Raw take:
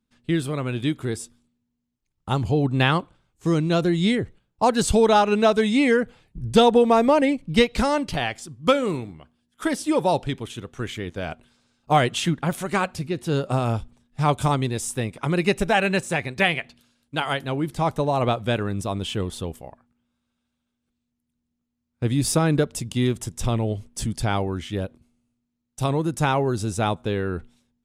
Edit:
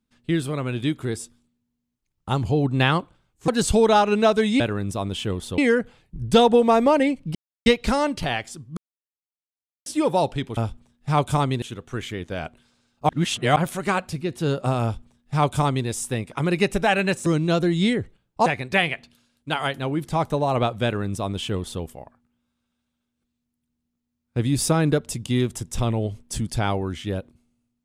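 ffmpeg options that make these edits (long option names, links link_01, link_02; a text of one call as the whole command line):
ffmpeg -i in.wav -filter_complex "[0:a]asplit=13[link_01][link_02][link_03][link_04][link_05][link_06][link_07][link_08][link_09][link_10][link_11][link_12][link_13];[link_01]atrim=end=3.482[link_14];[link_02]atrim=start=4.678:end=5.802[link_15];[link_03]atrim=start=18.498:end=19.482[link_16];[link_04]atrim=start=5.798:end=7.57,asetpts=PTS-STARTPTS,afade=type=out:start_time=1.768:duration=0.004:curve=hsin,apad=pad_dur=0.31[link_17];[link_05]atrim=start=7.57:end=8.68,asetpts=PTS-STARTPTS,afade=type=in:duration=0.004:curve=hsin,afade=type=out:start_time=1.106:duration=0.004:curve=hsin[link_18];[link_06]atrim=start=8.68:end=9.77,asetpts=PTS-STARTPTS,volume=0[link_19];[link_07]atrim=start=9.77:end=10.482,asetpts=PTS-STARTPTS,afade=type=in:duration=0.004:curve=hsin[link_20];[link_08]atrim=start=13.678:end=14.732[link_21];[link_09]atrim=start=10.478:end=11.952[link_22];[link_10]atrim=start=11.948:end=12.422,asetpts=PTS-STARTPTS,areverse[link_23];[link_11]atrim=start=12.418:end=16.122[link_24];[link_12]atrim=start=3.478:end=4.682[link_25];[link_13]atrim=start=16.118[link_26];[link_14][link_15]acrossfade=duration=0.004:curve1=hsin:curve2=hsin[link_27];[link_27][link_16]acrossfade=duration=0.004:curve1=hsin:curve2=hsin[link_28];[link_17][link_18][link_19][link_20]concat=n=4:v=0:a=1[link_29];[link_28][link_29]acrossfade=duration=0.004:curve1=hsin:curve2=hsin[link_30];[link_30][link_21]acrossfade=duration=0.004:curve1=hsin:curve2=hsin[link_31];[link_31][link_22]acrossfade=duration=0.004:curve1=hsin:curve2=hsin[link_32];[link_32][link_23]acrossfade=duration=0.004:curve1=hsin:curve2=hsin[link_33];[link_33][link_24]acrossfade=duration=0.004:curve1=hsin:curve2=hsin[link_34];[link_34][link_25]acrossfade=duration=0.004:curve1=hsin:curve2=hsin[link_35];[link_35][link_26]acrossfade=duration=0.004:curve1=hsin:curve2=hsin" out.wav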